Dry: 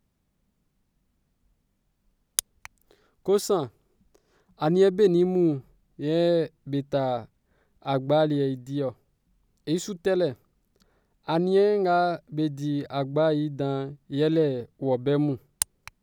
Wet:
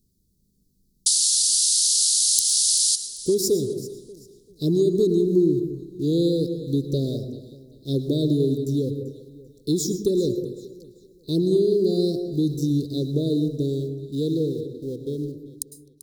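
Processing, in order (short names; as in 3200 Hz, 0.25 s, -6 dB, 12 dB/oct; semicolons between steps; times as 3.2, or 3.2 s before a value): ending faded out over 3.24 s; high shelf 4800 Hz +7 dB; in parallel at -10.5 dB: sample gate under -34.5 dBFS; on the sum: painted sound noise, 1.06–2.96, 1500–11000 Hz -14 dBFS; elliptic band-stop 410–4300 Hz, stop band 40 dB; compressor 6:1, threshold -22 dBFS, peak gain reduction 13 dB; on a send: echo with dull and thin repeats by turns 0.195 s, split 810 Hz, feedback 53%, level -11 dB; on the sum: plate-style reverb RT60 0.73 s, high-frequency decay 0.3×, pre-delay 95 ms, DRR 8 dB; gain +4.5 dB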